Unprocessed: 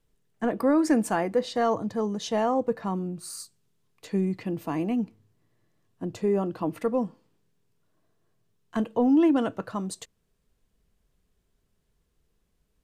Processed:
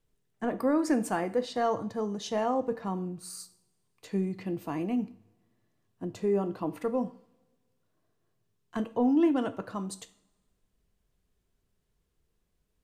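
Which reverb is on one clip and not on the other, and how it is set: two-slope reverb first 0.46 s, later 1.5 s, from -20 dB, DRR 11 dB; gain -4 dB

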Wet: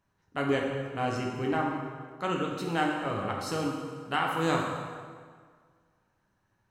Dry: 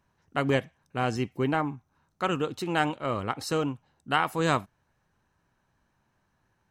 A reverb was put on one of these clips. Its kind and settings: plate-style reverb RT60 1.8 s, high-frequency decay 0.75×, DRR -1 dB; gain -5.5 dB

